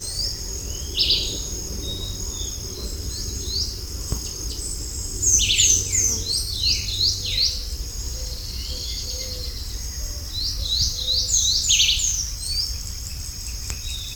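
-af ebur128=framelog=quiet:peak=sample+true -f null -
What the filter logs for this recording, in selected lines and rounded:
Integrated loudness:
  I:         -21.9 LUFS
  Threshold: -31.9 LUFS
Loudness range:
  LRA:         8.9 LU
  Threshold: -41.6 LUFS
  LRA low:   -27.6 LUFS
  LRA high:  -18.7 LUFS
Sample peak:
  Peak:       -4.7 dBFS
True peak:
  Peak:       -4.7 dBFS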